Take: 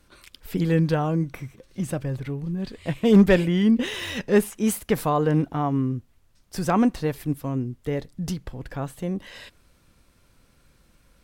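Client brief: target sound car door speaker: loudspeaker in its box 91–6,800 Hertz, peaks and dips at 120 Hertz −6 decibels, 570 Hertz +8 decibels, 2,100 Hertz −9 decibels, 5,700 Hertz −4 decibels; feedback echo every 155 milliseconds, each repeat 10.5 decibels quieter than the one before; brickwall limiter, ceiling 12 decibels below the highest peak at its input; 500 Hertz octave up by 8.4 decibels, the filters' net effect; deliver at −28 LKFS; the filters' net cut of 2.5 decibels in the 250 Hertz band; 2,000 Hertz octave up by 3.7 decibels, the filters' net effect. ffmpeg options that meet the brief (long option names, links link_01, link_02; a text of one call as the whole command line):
ffmpeg -i in.wav -af "equalizer=frequency=250:width_type=o:gain=-4.5,equalizer=frequency=500:width_type=o:gain=6.5,equalizer=frequency=2000:width_type=o:gain=8.5,alimiter=limit=-14.5dB:level=0:latency=1,highpass=91,equalizer=frequency=120:width_type=q:width=4:gain=-6,equalizer=frequency=570:width_type=q:width=4:gain=8,equalizer=frequency=2100:width_type=q:width=4:gain=-9,equalizer=frequency=5700:width_type=q:width=4:gain=-4,lowpass=frequency=6800:width=0.5412,lowpass=frequency=6800:width=1.3066,aecho=1:1:155|310|465:0.299|0.0896|0.0269,volume=-3dB" out.wav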